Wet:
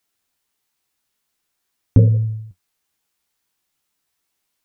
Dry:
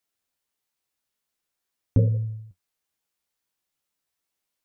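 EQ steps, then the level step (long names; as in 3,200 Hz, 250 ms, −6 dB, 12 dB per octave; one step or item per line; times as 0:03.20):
parametric band 550 Hz −4.5 dB 0.38 octaves
+8.0 dB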